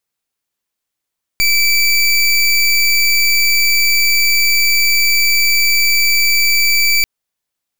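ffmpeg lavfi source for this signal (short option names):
-f lavfi -i "aevalsrc='0.251*(2*lt(mod(2320*t,1),0.24)-1)':d=5.64:s=44100"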